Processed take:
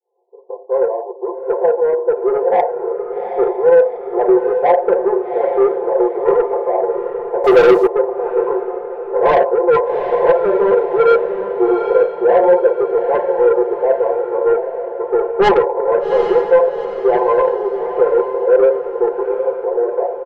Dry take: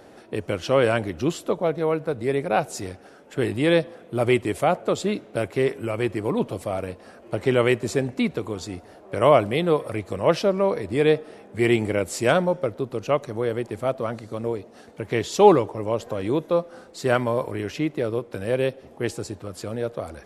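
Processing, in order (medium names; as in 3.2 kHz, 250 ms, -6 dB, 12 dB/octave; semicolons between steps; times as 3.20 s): fade-in on the opening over 2.91 s; in parallel at -7.5 dB: fuzz box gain 34 dB, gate -34 dBFS; on the sum: brick-wall FIR band-pass 370–1100 Hz; band-stop 650 Hz, Q 20; reverberation RT60 0.35 s, pre-delay 4 ms, DRR 1.5 dB; saturation -6 dBFS, distortion -11 dB; echo that smears into a reverb 784 ms, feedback 44%, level -8 dB; 7.44–7.87 s: waveshaping leveller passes 2; comb 5.8 ms, depth 57%; trim -1 dB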